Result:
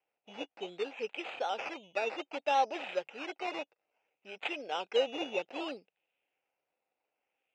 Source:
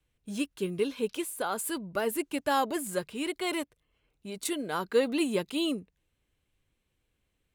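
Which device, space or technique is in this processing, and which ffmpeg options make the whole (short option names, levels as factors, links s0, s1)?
circuit-bent sampling toy: -af "acrusher=samples=11:mix=1:aa=0.000001:lfo=1:lforange=6.6:lforate=0.62,highpass=510,equalizer=f=530:t=q:w=4:g=5,equalizer=f=780:t=q:w=4:g=8,equalizer=f=1100:t=q:w=4:g=-8,equalizer=f=1700:t=q:w=4:g=-5,equalizer=f=2600:t=q:w=4:g=10,equalizer=f=4300:t=q:w=4:g=-8,lowpass=f=4900:w=0.5412,lowpass=f=4900:w=1.3066,volume=0.631"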